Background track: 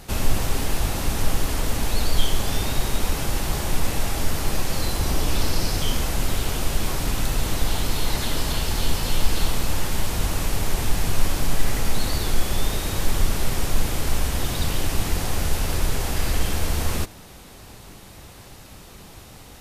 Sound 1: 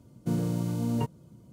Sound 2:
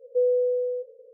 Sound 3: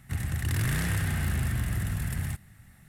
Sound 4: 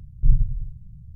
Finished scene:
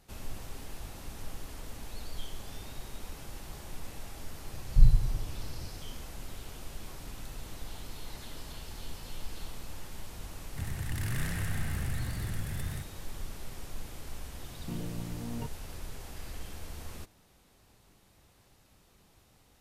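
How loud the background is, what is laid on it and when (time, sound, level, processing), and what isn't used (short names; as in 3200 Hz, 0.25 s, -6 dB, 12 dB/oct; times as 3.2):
background track -19.5 dB
4.53 add 4 -2.5 dB
10.47 add 3 -6.5 dB
14.41 add 1 -10.5 dB
not used: 2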